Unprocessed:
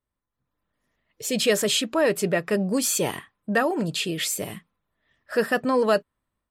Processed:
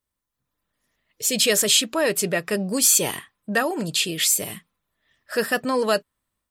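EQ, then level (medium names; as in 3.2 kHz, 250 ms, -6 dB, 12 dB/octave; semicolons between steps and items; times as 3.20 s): treble shelf 2.8 kHz +11 dB; -1.5 dB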